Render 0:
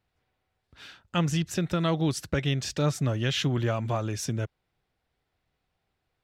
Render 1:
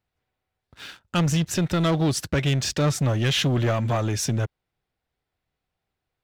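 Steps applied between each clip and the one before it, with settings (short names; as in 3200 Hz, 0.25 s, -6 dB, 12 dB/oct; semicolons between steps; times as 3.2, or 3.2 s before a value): sample leveller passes 2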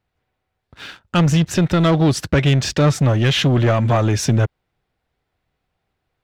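high shelf 5400 Hz -9.5 dB; in parallel at +2.5 dB: vocal rider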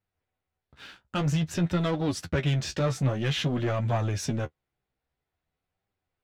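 flange 0.51 Hz, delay 9.8 ms, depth 6 ms, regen +26%; gain -7.5 dB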